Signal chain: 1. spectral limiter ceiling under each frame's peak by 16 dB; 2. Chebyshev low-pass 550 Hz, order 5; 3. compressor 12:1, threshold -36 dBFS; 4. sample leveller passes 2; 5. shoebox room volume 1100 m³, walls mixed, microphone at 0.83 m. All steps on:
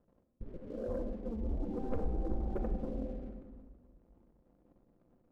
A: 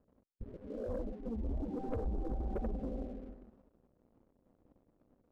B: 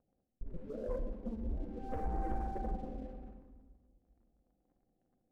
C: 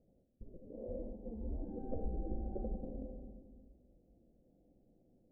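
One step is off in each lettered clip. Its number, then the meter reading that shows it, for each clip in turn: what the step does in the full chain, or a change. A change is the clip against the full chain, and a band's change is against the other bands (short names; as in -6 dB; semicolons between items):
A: 5, echo-to-direct -6.0 dB to none; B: 1, 1 kHz band +9.5 dB; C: 4, loudness change -5.5 LU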